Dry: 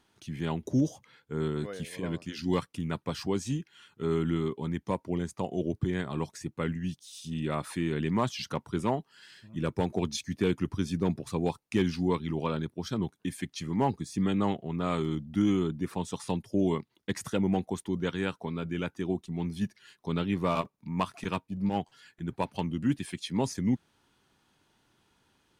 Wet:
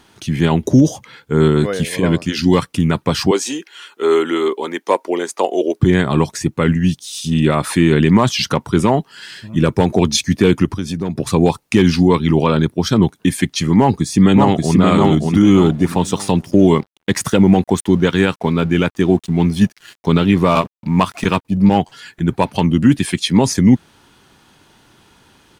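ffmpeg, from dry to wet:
-filter_complex "[0:a]asettb=1/sr,asplit=3[a][b][c];[a]atrim=end=3.314[d];[b]atrim=start=3.31:end=5.8,asetpts=PTS-STARTPTS,afade=t=in:d=0.004:c=qsin,afade=t=out:st=2.486:d=0.004:c=qsin,highpass=f=360:w=0.5412,highpass=f=360:w=1.3066[e];[c]atrim=start=5.796[f];[d][e]acrossfade=d=0.004:c1=hsin:c2=qsin[g];[g][f]acrossfade=d=0.004:c1=qsin:c2=hsin,asettb=1/sr,asplit=3[h][i][j];[h]atrim=end=10.654[k];[i]atrim=start=10.65:end=11.18,asetpts=PTS-STARTPTS,afade=t=in:d=0.004:c=qsin,afade=t=out:st=0.526:d=0.004:c=qsin,acompressor=threshold=-41dB:ratio=2.5:attack=3.2:release=140:knee=1:detection=peak[l];[j]atrim=start=11.176[m];[k][l]acrossfade=d=0.004:c1=hsin:c2=qsin[n];[n][m]acrossfade=d=0.004:c1=qsin:c2=hsin,asplit=2[o][p];[p]afade=t=in:st=13.77:d=0.01,afade=t=out:st=14.79:d=0.01,aecho=0:1:580|1160|1740|2320:0.749894|0.224968|0.0674905|0.0202471[q];[o][q]amix=inputs=2:normalize=0,asettb=1/sr,asplit=3[r][s][t];[r]atrim=end=15.514[u];[s]atrim=start=15.51:end=21.45,asetpts=PTS-STARTPTS,afade=t=in:d=0.004:c=qsin,afade=t=out:st=5.936:d=0.004:c=qsin,aeval=exprs='sgn(val(0))*max(abs(val(0))-0.00112,0)':c=same[v];[t]atrim=start=21.446[w];[u][v]acrossfade=d=0.004:c1=hsin:c2=qsin[x];[x][w]acrossfade=d=0.004:c1=qsin:c2=hsin,alimiter=level_in=19.5dB:limit=-1dB:release=50:level=0:latency=1,volume=-1dB"

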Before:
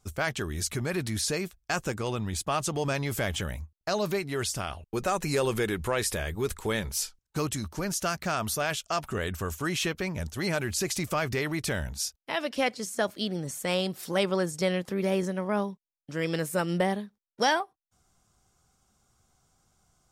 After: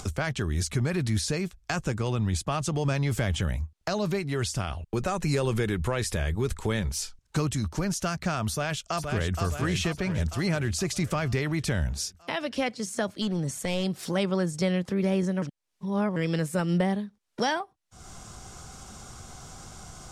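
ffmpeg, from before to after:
-filter_complex "[0:a]asplit=2[a][b];[b]afade=t=in:st=8.5:d=0.01,afade=t=out:st=9.4:d=0.01,aecho=0:1:470|940|1410|1880|2350|2820|3290:0.501187|0.275653|0.151609|0.083385|0.0458618|0.025224|0.0138732[c];[a][c]amix=inputs=2:normalize=0,asplit=3[d][e][f];[d]afade=t=out:st=13.21:d=0.02[g];[e]aeval=exprs='clip(val(0),-1,0.0355)':c=same,afade=t=in:st=13.21:d=0.02,afade=t=out:st=13.83:d=0.02[h];[f]afade=t=in:st=13.83:d=0.02[i];[g][h][i]amix=inputs=3:normalize=0,asplit=3[j][k][l];[j]atrim=end=15.422[m];[k]atrim=start=15.418:end=16.162,asetpts=PTS-STARTPTS,areverse[n];[l]atrim=start=16.158[o];[m][n]acrossfade=d=0.004:c1=hsin:c2=hsin[p];[p][o]acrossfade=d=0.004:c1=hsin:c2=hsin,acrossover=split=200[q][r];[r]acompressor=threshold=-51dB:ratio=1.5[s];[q][s]amix=inputs=2:normalize=0,lowpass=9.4k,acompressor=mode=upward:threshold=-36dB:ratio=2.5,volume=7.5dB"

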